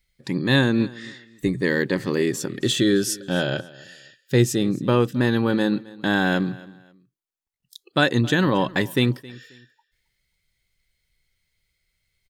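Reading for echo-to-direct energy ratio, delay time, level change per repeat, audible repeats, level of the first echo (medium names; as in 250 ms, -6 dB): -20.5 dB, 268 ms, -11.0 dB, 2, -21.0 dB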